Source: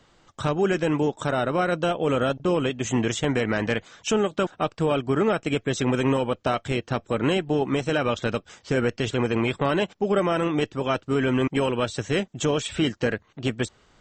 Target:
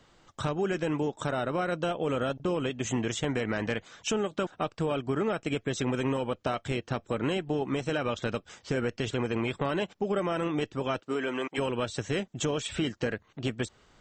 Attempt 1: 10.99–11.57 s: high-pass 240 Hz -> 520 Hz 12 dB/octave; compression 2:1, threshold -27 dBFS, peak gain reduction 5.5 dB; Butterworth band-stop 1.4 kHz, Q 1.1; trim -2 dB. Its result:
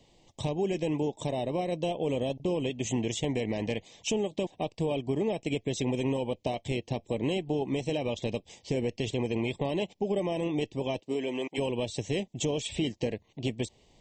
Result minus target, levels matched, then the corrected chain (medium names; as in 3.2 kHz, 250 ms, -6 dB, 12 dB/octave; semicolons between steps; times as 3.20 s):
1 kHz band -3.5 dB
10.99–11.57 s: high-pass 240 Hz -> 520 Hz 12 dB/octave; compression 2:1, threshold -27 dBFS, peak gain reduction 5.5 dB; trim -2 dB